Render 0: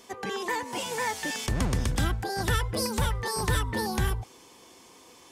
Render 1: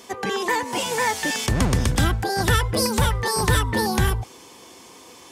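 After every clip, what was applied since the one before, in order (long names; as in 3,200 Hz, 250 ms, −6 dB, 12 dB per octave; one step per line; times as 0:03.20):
high-pass filter 47 Hz
level +7.5 dB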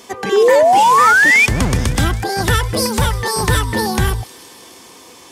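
sound drawn into the spectrogram rise, 0:00.32–0:01.46, 380–2,500 Hz −14 dBFS
delay with a high-pass on its return 157 ms, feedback 80%, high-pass 3,200 Hz, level −17 dB
level +4 dB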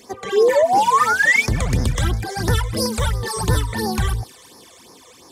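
all-pass phaser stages 12, 2.9 Hz, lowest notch 250–3,100 Hz
level −3 dB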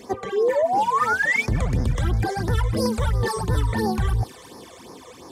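high-shelf EQ 2,100 Hz −10 dB
reversed playback
downward compressor, threshold −25 dBFS, peak gain reduction 12.5 dB
reversed playback
level +6.5 dB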